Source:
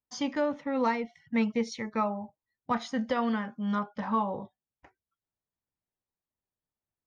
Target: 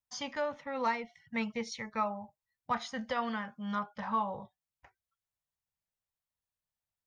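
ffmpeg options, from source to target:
-af "equalizer=f=310:w=1.3:g=-14,volume=-1dB"

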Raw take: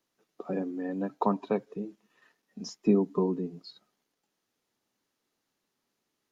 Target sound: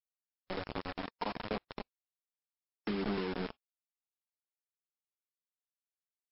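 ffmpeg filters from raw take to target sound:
-filter_complex "[0:a]asplit=3[a][b][c];[a]afade=t=out:st=0.69:d=0.02[d];[b]bandreject=f=50:t=h:w=6,bandreject=f=100:t=h:w=6,bandreject=f=150:t=h:w=6,bandreject=f=200:t=h:w=6,bandreject=f=250:t=h:w=6,bandreject=f=300:t=h:w=6,bandreject=f=350:t=h:w=6,bandreject=f=400:t=h:w=6,bandreject=f=450:t=h:w=6,afade=t=in:st=0.69:d=0.02,afade=t=out:st=1.7:d=0.02[e];[c]afade=t=in:st=1.7:d=0.02[f];[d][e][f]amix=inputs=3:normalize=0,highshelf=f=4.7k:g=2,bandreject=f=770:w=19,asplit=2[g][h];[h]adelay=180,lowpass=f=3.1k:p=1,volume=-6dB,asplit=2[i][j];[j]adelay=180,lowpass=f=3.1k:p=1,volume=0.21,asplit=2[k][l];[l]adelay=180,lowpass=f=3.1k:p=1,volume=0.21[m];[i][k][m]amix=inputs=3:normalize=0[n];[g][n]amix=inputs=2:normalize=0,aeval=exprs='val(0)+0.00112*(sin(2*PI*60*n/s)+sin(2*PI*2*60*n/s)/2+sin(2*PI*3*60*n/s)/3+sin(2*PI*4*60*n/s)/4+sin(2*PI*5*60*n/s)/5)':c=same,flanger=delay=10:depth=1.1:regen=-31:speed=0.44:shape=triangular,acrusher=bits=4:mix=0:aa=0.000001,acompressor=threshold=-29dB:ratio=2.5,aphaser=in_gain=1:out_gain=1:delay=4.7:decay=0.27:speed=1.3:type=sinusoidal,volume=-4dB" -ar 12000 -c:a libmp3lame -b:a 48k

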